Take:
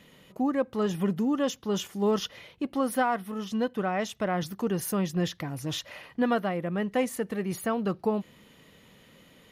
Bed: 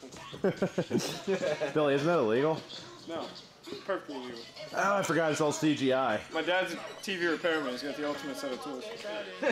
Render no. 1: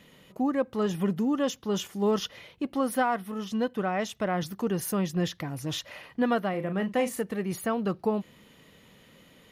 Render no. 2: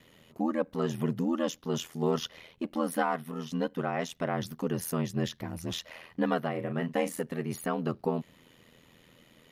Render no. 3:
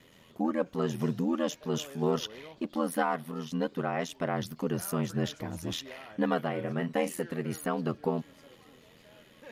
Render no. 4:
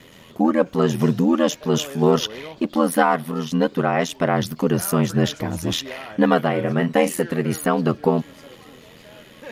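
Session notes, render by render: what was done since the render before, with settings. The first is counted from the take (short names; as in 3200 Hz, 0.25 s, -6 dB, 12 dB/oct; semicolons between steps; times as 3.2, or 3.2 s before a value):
6.5–7.23 doubler 37 ms -8.5 dB
ring modulator 41 Hz
add bed -20.5 dB
gain +11.5 dB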